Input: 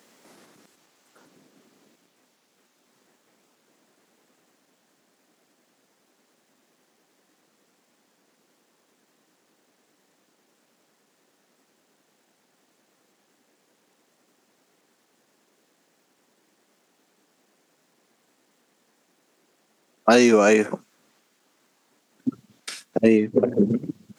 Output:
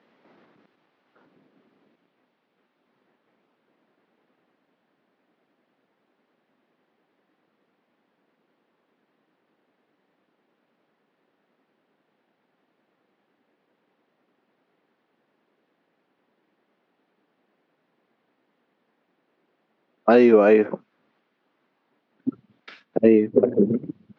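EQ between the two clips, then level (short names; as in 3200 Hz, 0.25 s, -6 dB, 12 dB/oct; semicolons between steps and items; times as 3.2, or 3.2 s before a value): Bessel low-pass 2400 Hz, order 6; dynamic EQ 410 Hz, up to +6 dB, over -28 dBFS, Q 0.95; -3.0 dB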